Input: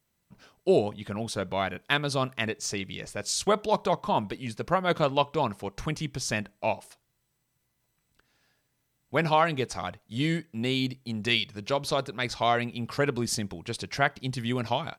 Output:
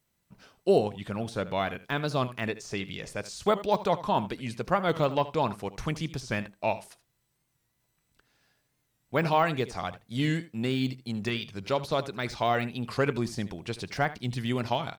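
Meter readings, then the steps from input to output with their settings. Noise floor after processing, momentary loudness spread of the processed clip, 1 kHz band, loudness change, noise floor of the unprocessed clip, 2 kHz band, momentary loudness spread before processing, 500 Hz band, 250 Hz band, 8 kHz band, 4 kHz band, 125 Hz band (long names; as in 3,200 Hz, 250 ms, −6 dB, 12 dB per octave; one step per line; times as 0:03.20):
−76 dBFS, 10 LU, −1.0 dB, −1.0 dB, −76 dBFS, −3.0 dB, 9 LU, −0.5 dB, 0.0 dB, −10.0 dB, −5.0 dB, +0.5 dB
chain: de-essing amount 95%
single-tap delay 77 ms −16 dB
wow of a warped record 45 rpm, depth 100 cents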